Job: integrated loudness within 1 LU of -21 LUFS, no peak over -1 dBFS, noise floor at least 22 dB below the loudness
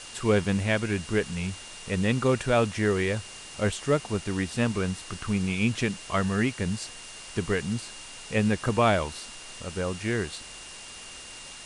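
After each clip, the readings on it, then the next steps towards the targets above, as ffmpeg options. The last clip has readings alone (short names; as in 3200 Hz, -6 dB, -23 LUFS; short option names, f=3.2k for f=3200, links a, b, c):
steady tone 2800 Hz; tone level -47 dBFS; noise floor -43 dBFS; noise floor target -50 dBFS; loudness -27.5 LUFS; peak -10.0 dBFS; loudness target -21.0 LUFS
-> -af "bandreject=f=2.8k:w=30"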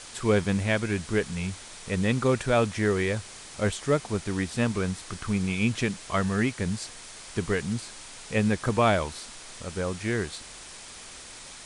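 steady tone none; noise floor -44 dBFS; noise floor target -50 dBFS
-> -af "afftdn=nr=6:nf=-44"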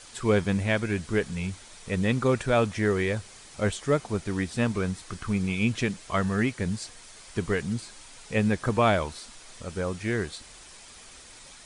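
noise floor -49 dBFS; noise floor target -50 dBFS
-> -af "afftdn=nr=6:nf=-49"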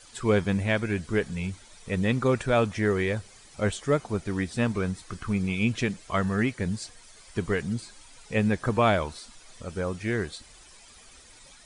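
noise floor -52 dBFS; loudness -27.5 LUFS; peak -10.5 dBFS; loudness target -21.0 LUFS
-> -af "volume=6.5dB"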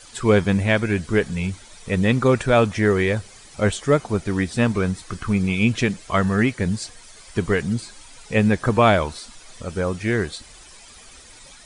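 loudness -21.0 LUFS; peak -4.0 dBFS; noise floor -46 dBFS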